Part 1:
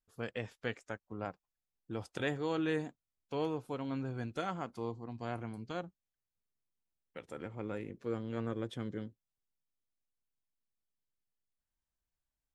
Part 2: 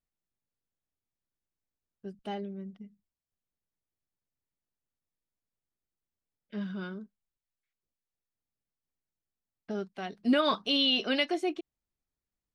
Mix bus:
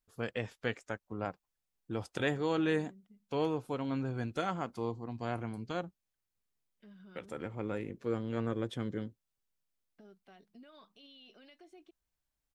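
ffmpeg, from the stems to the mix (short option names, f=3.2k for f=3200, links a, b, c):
-filter_complex "[0:a]volume=3dB[a];[1:a]acompressor=threshold=-37dB:ratio=4,alimiter=level_in=10.5dB:limit=-24dB:level=0:latency=1:release=95,volume=-10.5dB,adelay=300,volume=-14dB[b];[a][b]amix=inputs=2:normalize=0"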